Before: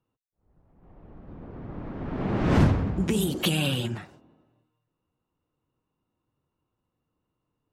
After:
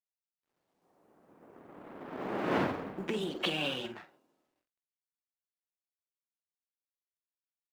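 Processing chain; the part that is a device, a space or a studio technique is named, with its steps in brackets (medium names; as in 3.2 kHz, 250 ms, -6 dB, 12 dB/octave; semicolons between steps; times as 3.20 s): phone line with mismatched companding (band-pass 360–3400 Hz; companding laws mixed up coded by A); doubling 46 ms -11.5 dB; trim -2 dB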